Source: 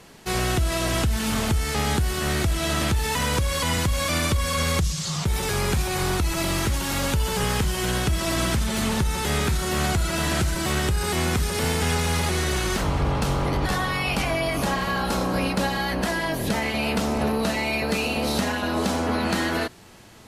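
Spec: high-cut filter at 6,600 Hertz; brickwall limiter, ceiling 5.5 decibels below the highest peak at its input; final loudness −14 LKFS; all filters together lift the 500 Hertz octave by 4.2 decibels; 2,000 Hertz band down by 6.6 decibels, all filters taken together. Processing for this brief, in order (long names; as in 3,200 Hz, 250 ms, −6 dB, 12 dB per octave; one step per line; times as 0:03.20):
low-pass filter 6,600 Hz
parametric band 500 Hz +6 dB
parametric band 2,000 Hz −9 dB
level +11.5 dB
brickwall limiter −4.5 dBFS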